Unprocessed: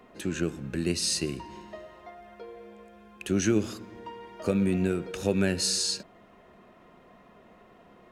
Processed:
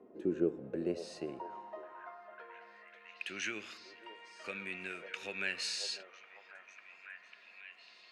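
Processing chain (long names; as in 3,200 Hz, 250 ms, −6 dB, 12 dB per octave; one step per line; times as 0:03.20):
echo through a band-pass that steps 548 ms, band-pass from 580 Hz, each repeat 0.7 octaves, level −5 dB
band-pass filter sweep 360 Hz → 2,300 Hz, 0:00.16–0:03.30
level +2.5 dB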